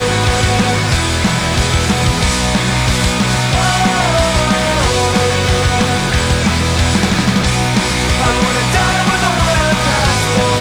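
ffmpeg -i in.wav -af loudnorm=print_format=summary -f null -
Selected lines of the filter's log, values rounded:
Input Integrated:    -13.0 LUFS
Input True Peak:      -2.1 dBTP
Input LRA:             0.7 LU
Input Threshold:     -23.0 LUFS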